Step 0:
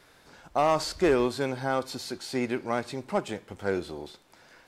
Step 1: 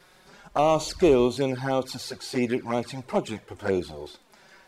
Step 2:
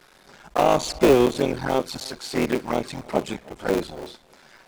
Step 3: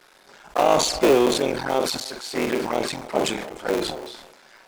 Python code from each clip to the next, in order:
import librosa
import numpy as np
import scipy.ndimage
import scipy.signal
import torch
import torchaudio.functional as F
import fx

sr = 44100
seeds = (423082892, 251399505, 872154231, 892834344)

y1 = fx.env_flanger(x, sr, rest_ms=5.9, full_db=-23.5)
y1 = y1 * 10.0 ** (5.0 / 20.0)
y2 = fx.cycle_switch(y1, sr, every=3, mode='muted')
y2 = fx.peak_eq(y2, sr, hz=93.0, db=-14.0, octaves=0.35)
y2 = y2 + 10.0 ** (-23.5 / 20.0) * np.pad(y2, (int(311 * sr / 1000.0), 0))[:len(y2)]
y2 = y2 * 10.0 ** (4.0 / 20.0)
y3 = fx.bass_treble(y2, sr, bass_db=-9, treble_db=0)
y3 = fx.doubler(y3, sr, ms=44.0, db=-14)
y3 = fx.sustainer(y3, sr, db_per_s=54.0)